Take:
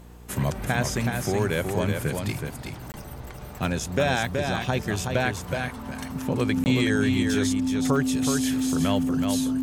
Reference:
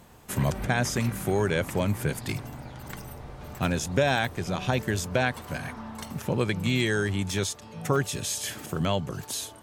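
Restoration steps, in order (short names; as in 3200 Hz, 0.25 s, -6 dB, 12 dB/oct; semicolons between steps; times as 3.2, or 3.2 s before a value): de-hum 59.6 Hz, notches 8; notch 260 Hz, Q 30; interpolate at 2.92/6.64, 19 ms; inverse comb 0.373 s -5 dB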